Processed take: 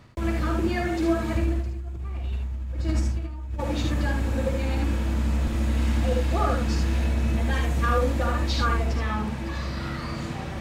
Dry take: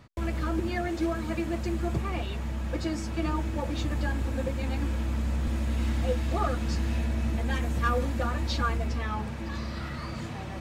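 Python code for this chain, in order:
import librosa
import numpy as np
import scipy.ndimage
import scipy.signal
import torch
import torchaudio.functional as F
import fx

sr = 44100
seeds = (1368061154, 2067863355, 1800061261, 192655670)

y = fx.peak_eq(x, sr, hz=73.0, db=14.5, octaves=1.3, at=(1.35, 3.59))
y = fx.over_compress(y, sr, threshold_db=-24.0, ratio=-0.5)
y = fx.room_early_taps(y, sr, ms=(51, 75), db=(-7.5, -4.0))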